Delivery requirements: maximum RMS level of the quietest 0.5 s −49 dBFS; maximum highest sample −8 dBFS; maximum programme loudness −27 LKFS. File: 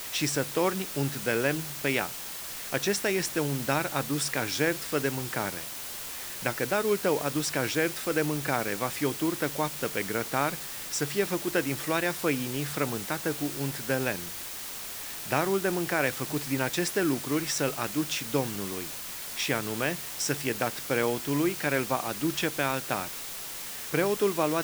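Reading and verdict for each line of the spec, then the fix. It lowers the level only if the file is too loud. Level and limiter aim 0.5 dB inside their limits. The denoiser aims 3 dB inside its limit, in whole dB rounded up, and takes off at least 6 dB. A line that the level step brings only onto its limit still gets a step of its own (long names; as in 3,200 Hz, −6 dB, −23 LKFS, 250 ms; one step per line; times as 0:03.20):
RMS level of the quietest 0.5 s −38 dBFS: out of spec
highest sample −9.5 dBFS: in spec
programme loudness −29.0 LKFS: in spec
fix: broadband denoise 14 dB, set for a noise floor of −38 dBFS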